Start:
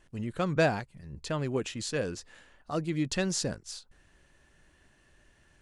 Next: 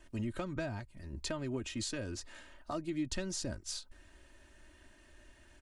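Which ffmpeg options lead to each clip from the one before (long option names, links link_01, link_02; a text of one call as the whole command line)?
ffmpeg -i in.wav -filter_complex "[0:a]acrossover=split=150[link_01][link_02];[link_02]acompressor=threshold=-38dB:ratio=16[link_03];[link_01][link_03]amix=inputs=2:normalize=0,aecho=1:1:3.2:0.69,volume=1dB" out.wav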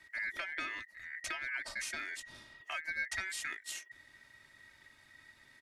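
ffmpeg -i in.wav -af "aeval=exprs='val(0)*sin(2*PI*1900*n/s)':channel_layout=same,volume=1dB" out.wav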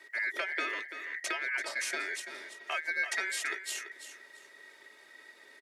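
ffmpeg -i in.wav -af "highpass=frequency=420:width_type=q:width=3.9,aecho=1:1:337|674|1011:0.282|0.0648|0.0149,volume=4.5dB" out.wav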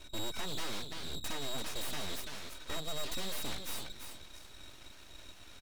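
ffmpeg -i in.wav -af "aeval=exprs='abs(val(0))':channel_layout=same,aeval=exprs='(tanh(31.6*val(0)+0.55)-tanh(0.55))/31.6':channel_layout=same,volume=7.5dB" out.wav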